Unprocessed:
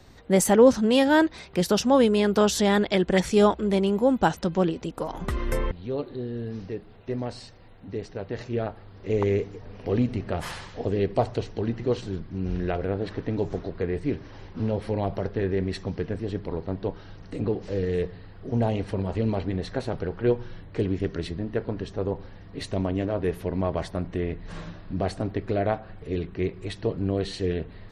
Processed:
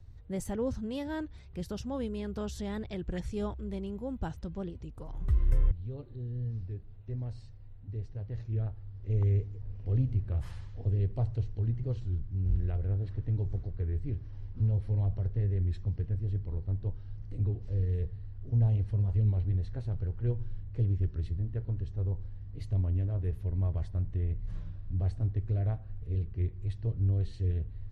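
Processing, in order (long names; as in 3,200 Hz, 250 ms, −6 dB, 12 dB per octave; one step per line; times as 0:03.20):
drawn EQ curve 110 Hz 0 dB, 180 Hz −17 dB, 710 Hz −24 dB
wow of a warped record 33 1/3 rpm, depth 100 cents
level +4 dB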